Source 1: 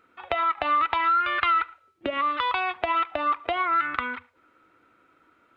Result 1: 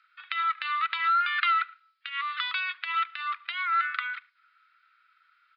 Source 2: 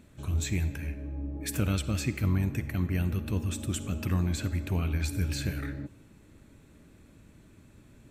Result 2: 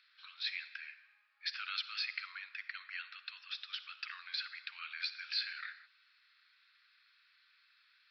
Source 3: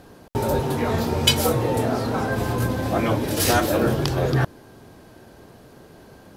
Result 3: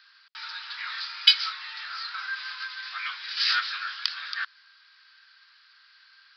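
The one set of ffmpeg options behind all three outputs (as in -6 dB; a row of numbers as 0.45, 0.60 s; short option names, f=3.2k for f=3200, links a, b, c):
-af "asuperpass=centerf=3200:order=12:qfactor=0.53,aresample=11025,aresample=44100,aexciter=amount=2:drive=4.8:freq=4k"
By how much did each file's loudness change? -3.0, -9.5, -5.0 LU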